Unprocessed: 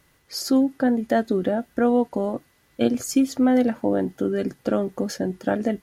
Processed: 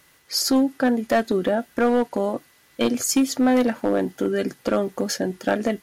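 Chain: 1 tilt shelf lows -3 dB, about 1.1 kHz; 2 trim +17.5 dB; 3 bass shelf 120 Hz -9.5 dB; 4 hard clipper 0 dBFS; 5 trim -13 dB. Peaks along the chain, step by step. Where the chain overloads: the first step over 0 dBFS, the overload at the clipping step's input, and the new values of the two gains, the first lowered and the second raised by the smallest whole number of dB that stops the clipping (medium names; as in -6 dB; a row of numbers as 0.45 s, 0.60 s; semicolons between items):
-9.0 dBFS, +8.5 dBFS, +8.0 dBFS, 0.0 dBFS, -13.0 dBFS; step 2, 8.0 dB; step 2 +9.5 dB, step 5 -5 dB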